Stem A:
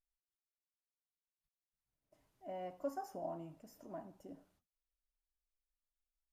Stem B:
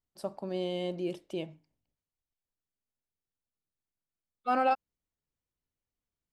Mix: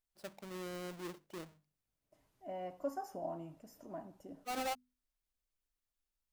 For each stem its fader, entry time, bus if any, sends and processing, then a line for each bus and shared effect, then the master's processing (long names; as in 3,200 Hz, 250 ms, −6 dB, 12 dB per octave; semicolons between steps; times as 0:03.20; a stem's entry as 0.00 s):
+1.5 dB, 0.00 s, no send, no processing
−15.0 dB, 0.00 s, no send, each half-wave held at its own peak; mains-hum notches 50/100/150/200/250 Hz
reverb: not used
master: no processing